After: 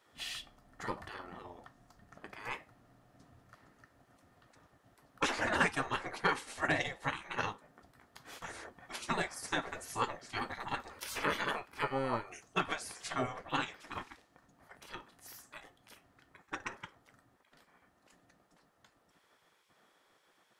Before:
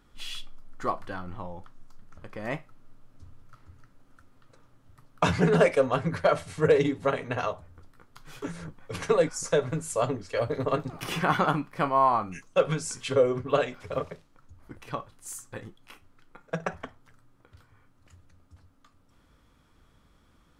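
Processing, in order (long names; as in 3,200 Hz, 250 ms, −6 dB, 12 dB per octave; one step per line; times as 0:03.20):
hollow resonant body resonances 710/1,800 Hz, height 12 dB, ringing for 35 ms
gate on every frequency bin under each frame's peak −15 dB weak
level −1 dB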